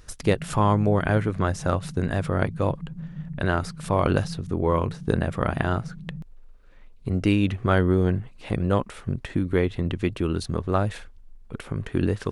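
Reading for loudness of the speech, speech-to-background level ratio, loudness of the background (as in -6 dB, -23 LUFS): -25.0 LUFS, 13.0 dB, -38.0 LUFS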